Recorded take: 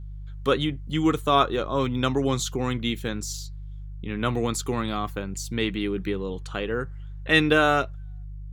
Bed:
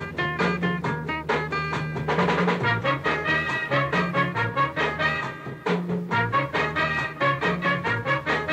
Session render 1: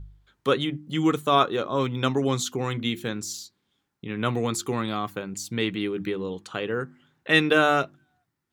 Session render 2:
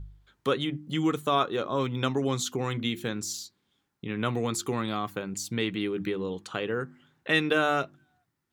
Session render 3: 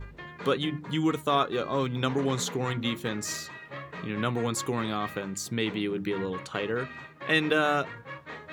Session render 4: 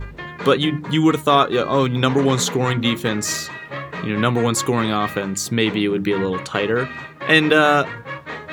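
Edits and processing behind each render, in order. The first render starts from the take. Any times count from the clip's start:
hum removal 50 Hz, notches 7
downward compressor 1.5 to 1, threshold −29 dBFS, peak gain reduction 5.5 dB
mix in bed −17.5 dB
level +10.5 dB; brickwall limiter −2 dBFS, peak gain reduction 1 dB

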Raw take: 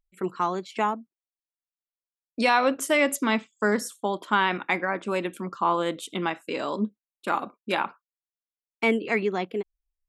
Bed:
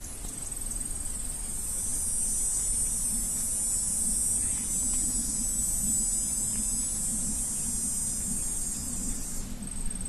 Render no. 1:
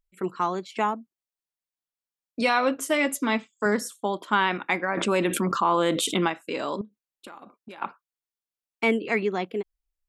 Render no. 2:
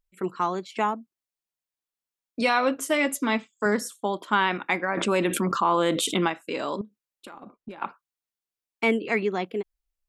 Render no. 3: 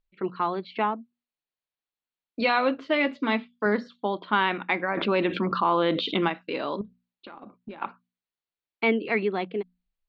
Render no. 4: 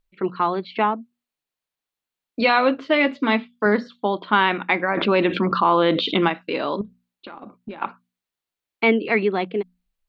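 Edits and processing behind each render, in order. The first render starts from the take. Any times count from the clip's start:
0:02.40–0:03.66: notch comb filter 190 Hz; 0:04.97–0:06.28: envelope flattener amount 70%; 0:06.81–0:07.82: downward compressor 10 to 1, threshold −39 dBFS
0:07.33–0:07.80: spectral tilt −2.5 dB per octave
Chebyshev low-pass filter 4,400 Hz, order 5; mains-hum notches 60/120/180/240 Hz
level +5.5 dB

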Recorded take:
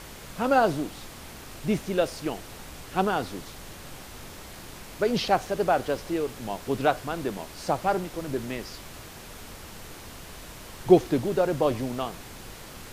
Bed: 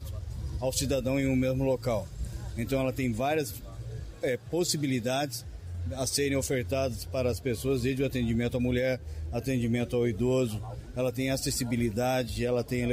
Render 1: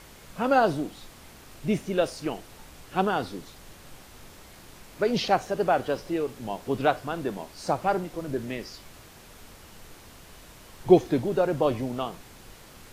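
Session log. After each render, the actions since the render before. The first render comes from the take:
noise reduction from a noise print 6 dB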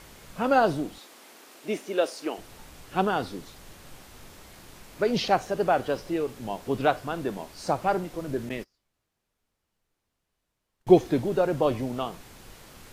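0:00.98–0:02.38: high-pass filter 270 Hz 24 dB per octave
0:08.49–0:10.88: noise gate −38 dBFS, range −32 dB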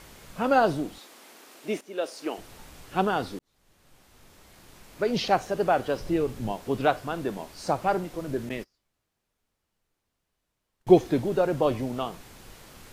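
0:01.81–0:02.31: fade in, from −12.5 dB
0:03.39–0:05.35: fade in
0:06.00–0:06.52: low-shelf EQ 190 Hz +11.5 dB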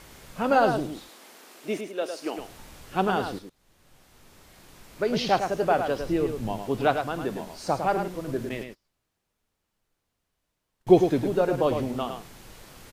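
single-tap delay 106 ms −7 dB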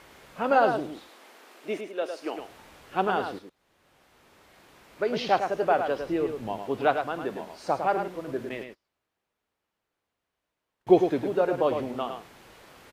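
high-pass filter 42 Hz
bass and treble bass −9 dB, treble −9 dB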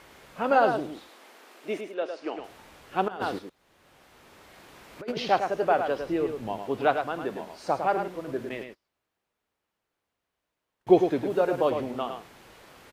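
0:01.94–0:02.44: high-frequency loss of the air 100 metres
0:03.08–0:05.17: compressor whose output falls as the input rises −31 dBFS, ratio −0.5
0:11.30–0:11.70: high-shelf EQ 5,300 Hz +5.5 dB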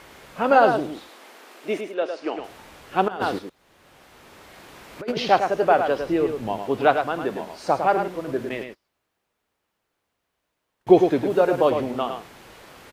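level +5.5 dB
brickwall limiter −3 dBFS, peak gain reduction 2 dB

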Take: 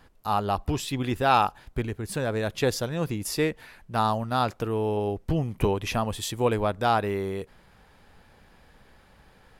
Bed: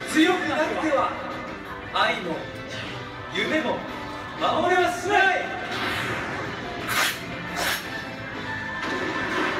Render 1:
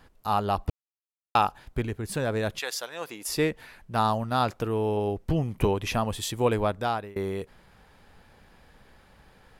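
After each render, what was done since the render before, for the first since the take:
0:00.70–0:01.35: silence
0:02.58–0:03.28: high-pass filter 1,200 Hz → 430 Hz
0:06.67–0:07.16: fade out, to −23.5 dB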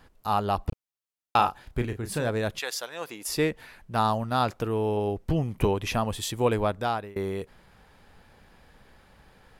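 0:00.69–0:02.30: double-tracking delay 33 ms −8.5 dB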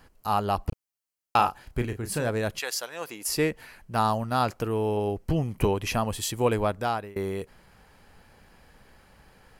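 high-shelf EQ 5,100 Hz +4.5 dB
notch filter 3,600 Hz, Q 9.1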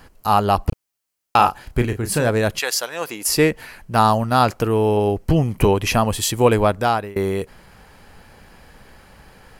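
level +9 dB
brickwall limiter −2 dBFS, peak gain reduction 3 dB

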